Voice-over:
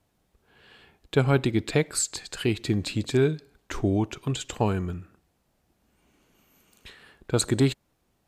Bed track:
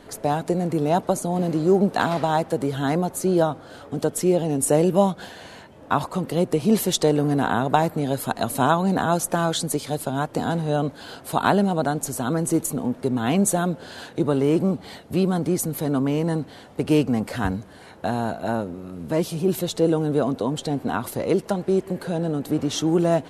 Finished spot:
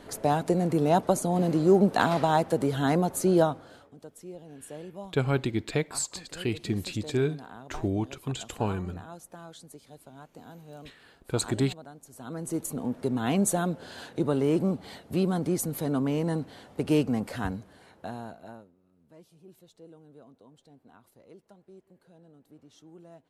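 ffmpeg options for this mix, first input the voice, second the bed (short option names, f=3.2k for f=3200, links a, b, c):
-filter_complex "[0:a]adelay=4000,volume=-4.5dB[a];[1:a]volume=16.5dB,afade=t=out:st=3.39:d=0.55:silence=0.0841395,afade=t=in:st=12.09:d=0.89:silence=0.11885,afade=t=out:st=17.06:d=1.66:silence=0.0501187[b];[a][b]amix=inputs=2:normalize=0"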